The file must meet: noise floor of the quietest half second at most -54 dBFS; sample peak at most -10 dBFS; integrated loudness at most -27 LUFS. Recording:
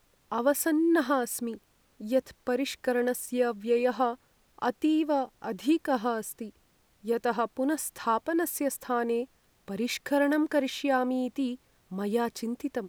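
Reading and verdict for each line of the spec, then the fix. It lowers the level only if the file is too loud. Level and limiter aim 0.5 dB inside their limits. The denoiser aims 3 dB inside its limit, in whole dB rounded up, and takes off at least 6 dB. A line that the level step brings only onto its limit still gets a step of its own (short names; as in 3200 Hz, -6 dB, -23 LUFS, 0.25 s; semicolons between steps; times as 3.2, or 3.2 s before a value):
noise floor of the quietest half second -66 dBFS: OK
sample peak -13.0 dBFS: OK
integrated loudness -29.0 LUFS: OK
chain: none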